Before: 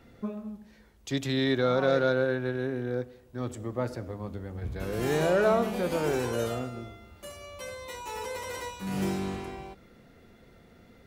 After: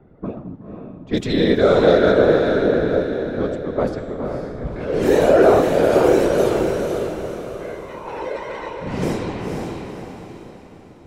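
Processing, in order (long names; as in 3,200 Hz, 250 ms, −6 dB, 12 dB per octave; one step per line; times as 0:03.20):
mains-hum notches 50/100/150/200 Hz
low-pass that shuts in the quiet parts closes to 830 Hz, open at −24.5 dBFS
dynamic equaliser 440 Hz, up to +8 dB, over −41 dBFS, Q 2.2
random phases in short frames
feedback delay with all-pass diffusion 497 ms, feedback 43%, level −4.5 dB
level +6 dB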